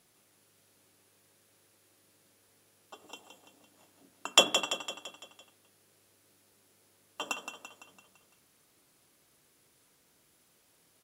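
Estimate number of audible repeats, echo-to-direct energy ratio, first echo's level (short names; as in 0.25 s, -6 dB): 5, -6.5 dB, -8.0 dB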